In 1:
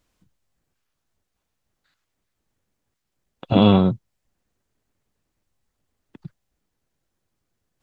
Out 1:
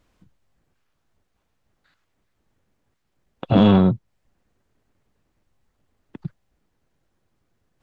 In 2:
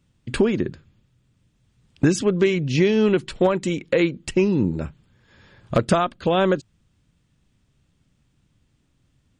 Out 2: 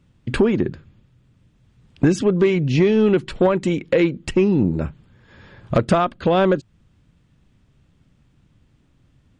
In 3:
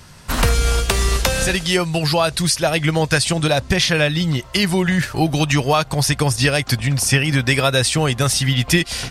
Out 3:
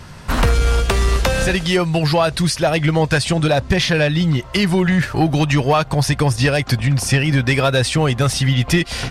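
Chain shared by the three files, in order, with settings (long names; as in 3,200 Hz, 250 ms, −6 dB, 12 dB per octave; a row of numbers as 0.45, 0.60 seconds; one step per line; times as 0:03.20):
high-shelf EQ 4,000 Hz −10.5 dB
in parallel at −2 dB: downward compressor, threshold −29 dBFS
on the sum: soft clipping −8 dBFS
level +2 dB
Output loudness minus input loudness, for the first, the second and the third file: +0.5, +2.0, +0.5 LU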